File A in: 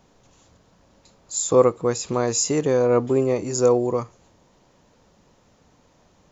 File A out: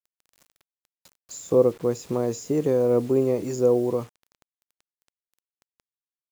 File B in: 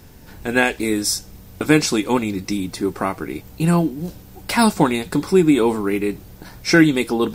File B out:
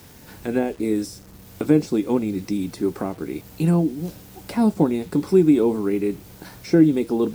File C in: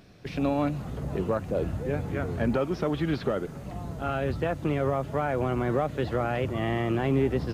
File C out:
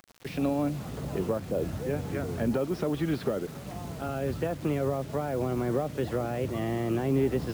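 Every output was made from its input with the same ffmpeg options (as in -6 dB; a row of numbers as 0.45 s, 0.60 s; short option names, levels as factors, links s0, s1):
-filter_complex "[0:a]highpass=f=110:p=1,acrossover=split=630[s0][s1];[s1]acompressor=threshold=0.0112:ratio=6[s2];[s0][s2]amix=inputs=2:normalize=0,acrusher=bits=7:mix=0:aa=0.000001"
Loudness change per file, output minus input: -2.5 LU, -2.5 LU, -2.0 LU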